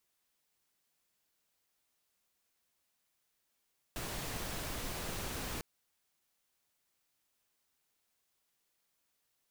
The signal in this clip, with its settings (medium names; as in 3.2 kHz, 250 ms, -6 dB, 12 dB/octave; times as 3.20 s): noise pink, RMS -40 dBFS 1.65 s